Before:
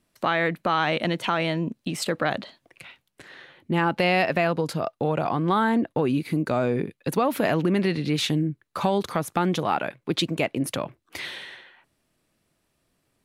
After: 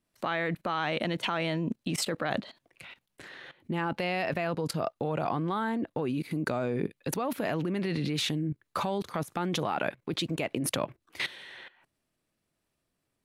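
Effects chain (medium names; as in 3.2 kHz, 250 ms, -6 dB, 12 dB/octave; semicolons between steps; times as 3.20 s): level held to a coarse grid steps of 17 dB; trim +4 dB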